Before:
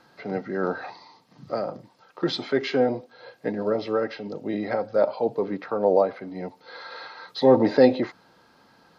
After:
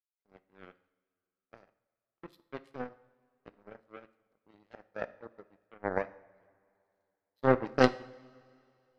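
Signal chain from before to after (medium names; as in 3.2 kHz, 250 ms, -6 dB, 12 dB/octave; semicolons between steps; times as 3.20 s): power-law waveshaper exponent 3; two-slope reverb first 0.61 s, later 2.6 s, from -17 dB, DRR 13.5 dB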